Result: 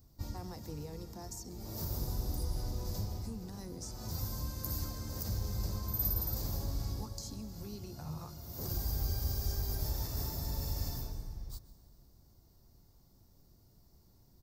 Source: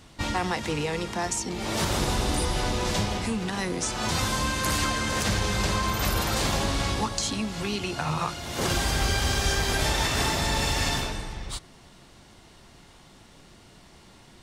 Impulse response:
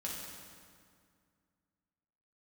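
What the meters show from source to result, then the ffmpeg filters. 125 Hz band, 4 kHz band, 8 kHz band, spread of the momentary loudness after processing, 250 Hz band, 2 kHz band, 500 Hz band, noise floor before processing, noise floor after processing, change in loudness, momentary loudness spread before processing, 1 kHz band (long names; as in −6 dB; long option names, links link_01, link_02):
−7.5 dB, −19.0 dB, −16.0 dB, 10 LU, −14.5 dB, −29.5 dB, −17.5 dB, −53 dBFS, −64 dBFS, −12.0 dB, 5 LU, −22.0 dB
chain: -filter_complex "[0:a]firequalizer=gain_entry='entry(100,0);entry(180,-8);entry(1700,-23);entry(3000,-27);entry(4800,-7);entry(9500,-14);entry(14000,14)':delay=0.05:min_phase=1,asplit=2[link_01][link_02];[1:a]atrim=start_sample=2205,adelay=128[link_03];[link_02][link_03]afir=irnorm=-1:irlink=0,volume=-16dB[link_04];[link_01][link_04]amix=inputs=2:normalize=0,volume=-6.5dB"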